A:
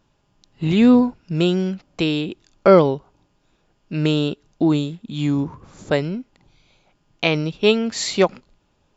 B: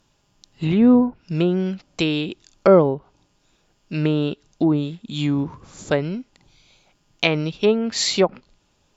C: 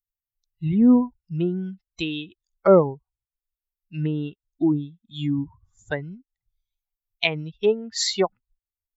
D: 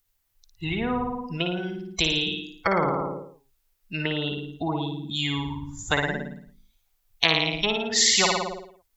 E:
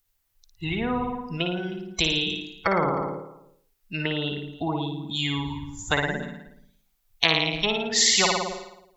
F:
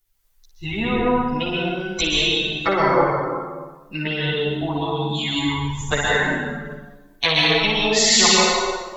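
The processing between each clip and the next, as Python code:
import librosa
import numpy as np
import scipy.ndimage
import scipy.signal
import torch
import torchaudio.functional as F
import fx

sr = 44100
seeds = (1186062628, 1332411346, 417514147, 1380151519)

y1 = fx.env_lowpass_down(x, sr, base_hz=1100.0, full_db=-13.0)
y1 = fx.high_shelf(y1, sr, hz=3600.0, db=11.5)
y1 = y1 * librosa.db_to_amplitude(-1.0)
y2 = fx.bin_expand(y1, sr, power=2.0)
y3 = fx.room_flutter(y2, sr, wall_m=9.6, rt60_s=0.57)
y3 = fx.spectral_comp(y3, sr, ratio=4.0)
y3 = y3 * librosa.db_to_amplitude(1.5)
y4 = y3 + 10.0 ** (-21.0 / 20.0) * np.pad(y3, (int(311 * sr / 1000.0), 0))[:len(y3)]
y5 = fx.rev_plate(y4, sr, seeds[0], rt60_s=1.3, hf_ratio=0.65, predelay_ms=115, drr_db=-3.5)
y5 = fx.chorus_voices(y5, sr, voices=6, hz=0.31, base_ms=11, depth_ms=3.2, mix_pct=55)
y5 = y5 * librosa.db_to_amplitude(4.5)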